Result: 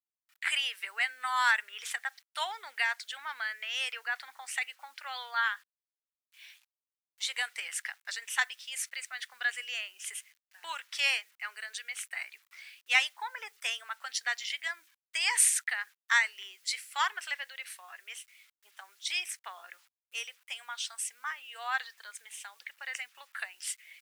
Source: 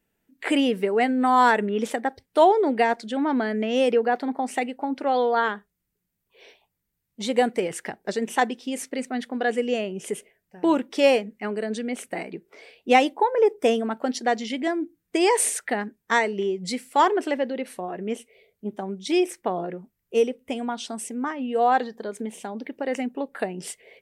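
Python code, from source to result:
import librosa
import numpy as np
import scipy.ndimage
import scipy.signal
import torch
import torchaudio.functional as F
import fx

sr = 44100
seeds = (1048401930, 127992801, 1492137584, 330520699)

y = fx.quant_dither(x, sr, seeds[0], bits=10, dither='none')
y = scipy.signal.sosfilt(scipy.signal.butter(4, 1400.0, 'highpass', fs=sr, output='sos'), y)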